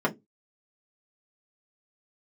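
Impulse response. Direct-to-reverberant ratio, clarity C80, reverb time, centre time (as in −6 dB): −4.0 dB, 30.0 dB, 0.20 s, 8 ms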